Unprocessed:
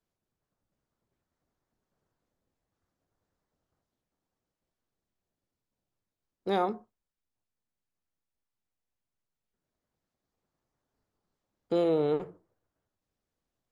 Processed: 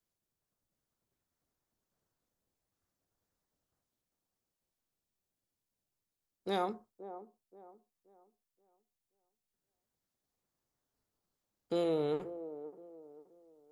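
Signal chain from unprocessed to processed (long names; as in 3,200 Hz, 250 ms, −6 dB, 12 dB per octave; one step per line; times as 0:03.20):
high-shelf EQ 4,200 Hz +10.5 dB
on a send: delay with a band-pass on its return 527 ms, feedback 33%, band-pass 470 Hz, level −12 dB
on the sum: level −6 dB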